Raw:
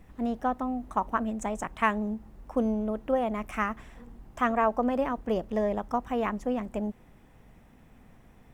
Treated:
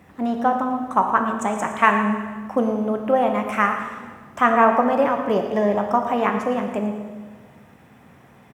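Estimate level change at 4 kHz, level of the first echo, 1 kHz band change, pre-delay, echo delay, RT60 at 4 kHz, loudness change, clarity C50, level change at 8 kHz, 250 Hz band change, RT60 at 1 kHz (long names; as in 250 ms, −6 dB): +9.0 dB, −13.5 dB, +10.5 dB, 3 ms, 114 ms, 1.4 s, +9.0 dB, 5.5 dB, can't be measured, +7.0 dB, 1.4 s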